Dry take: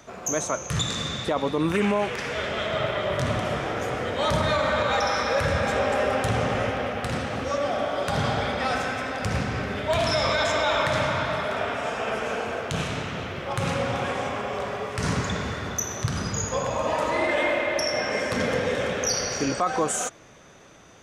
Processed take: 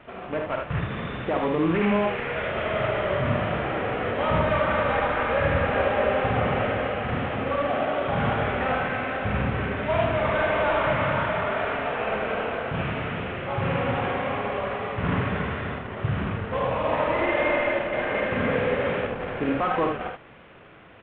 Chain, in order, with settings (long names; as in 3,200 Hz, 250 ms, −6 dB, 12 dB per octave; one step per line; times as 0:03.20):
variable-slope delta modulation 16 kbit/s
on a send: ambience of single reflections 48 ms −6 dB, 77 ms −5 dB